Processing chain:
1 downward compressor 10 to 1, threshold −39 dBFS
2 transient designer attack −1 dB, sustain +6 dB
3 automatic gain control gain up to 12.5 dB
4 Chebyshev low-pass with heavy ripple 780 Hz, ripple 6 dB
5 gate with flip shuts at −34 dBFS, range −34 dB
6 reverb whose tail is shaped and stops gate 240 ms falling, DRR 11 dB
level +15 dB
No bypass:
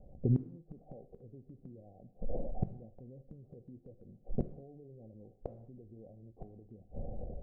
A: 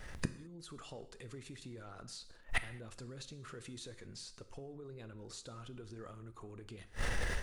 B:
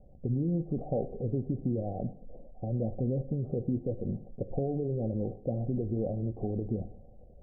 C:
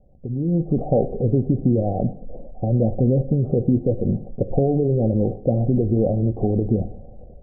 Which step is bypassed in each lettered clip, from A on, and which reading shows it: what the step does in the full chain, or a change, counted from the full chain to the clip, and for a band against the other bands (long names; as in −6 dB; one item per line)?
4, 1 kHz band +12.0 dB
3, change in crest factor −8.5 dB
5, change in momentary loudness spread −11 LU